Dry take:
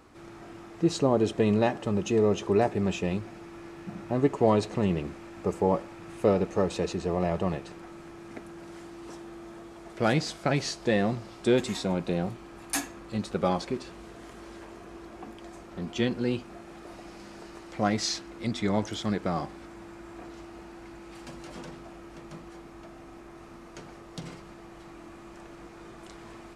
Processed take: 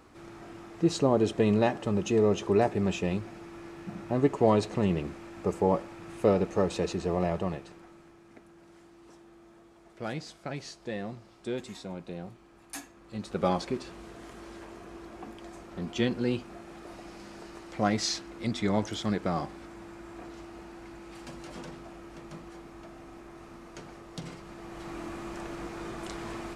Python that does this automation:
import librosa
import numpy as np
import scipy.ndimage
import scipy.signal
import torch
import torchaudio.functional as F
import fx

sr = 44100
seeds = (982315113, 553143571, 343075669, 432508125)

y = fx.gain(x, sr, db=fx.line((7.21, -0.5), (8.23, -11.0), (12.95, -11.0), (13.45, -0.5), (24.37, -0.5), (24.96, 7.5)))